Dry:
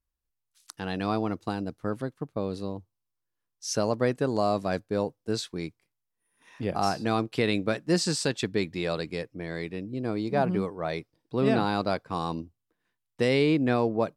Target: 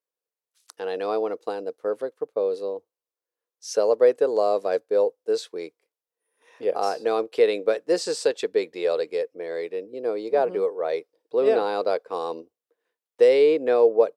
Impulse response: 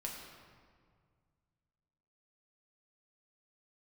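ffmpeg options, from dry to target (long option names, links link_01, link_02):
-af "highpass=frequency=470:width_type=q:width=5.5,volume=-2.5dB"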